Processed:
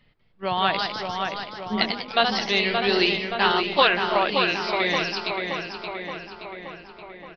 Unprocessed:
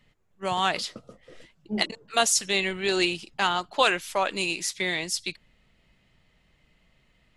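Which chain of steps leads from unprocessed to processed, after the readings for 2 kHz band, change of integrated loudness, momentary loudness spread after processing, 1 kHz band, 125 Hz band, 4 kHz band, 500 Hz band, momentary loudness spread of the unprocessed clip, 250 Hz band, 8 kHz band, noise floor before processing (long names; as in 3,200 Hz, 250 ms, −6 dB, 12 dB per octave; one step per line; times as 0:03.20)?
+4.5 dB, +3.0 dB, 17 LU, +5.0 dB, +4.5 dB, +4.0 dB, +5.0 dB, 9 LU, +4.5 dB, −18.0 dB, −66 dBFS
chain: downsampling to 11,025 Hz
delay with pitch and tempo change per echo 195 ms, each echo +1 semitone, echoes 3, each echo −6 dB
feedback echo with a low-pass in the loop 574 ms, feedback 63%, low-pass 3,800 Hz, level −5 dB
level +2 dB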